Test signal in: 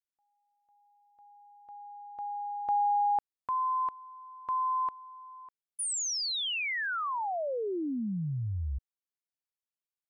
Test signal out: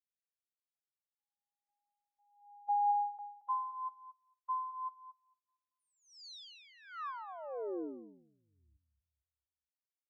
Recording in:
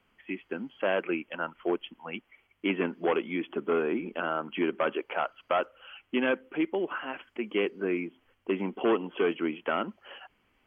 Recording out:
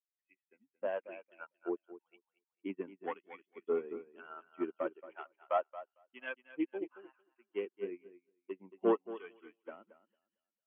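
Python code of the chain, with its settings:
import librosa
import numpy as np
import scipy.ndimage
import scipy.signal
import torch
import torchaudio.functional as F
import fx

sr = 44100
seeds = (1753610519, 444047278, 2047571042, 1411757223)

p1 = fx.bin_expand(x, sr, power=1.5)
p2 = fx.filter_lfo_bandpass(p1, sr, shape='sine', hz=1.0, low_hz=410.0, high_hz=1900.0, q=0.73)
p3 = p2 + fx.echo_feedback(p2, sr, ms=226, feedback_pct=37, wet_db=-6.0, dry=0)
p4 = fx.upward_expand(p3, sr, threshold_db=-49.0, expansion=2.5)
y = p4 * librosa.db_to_amplitude(1.0)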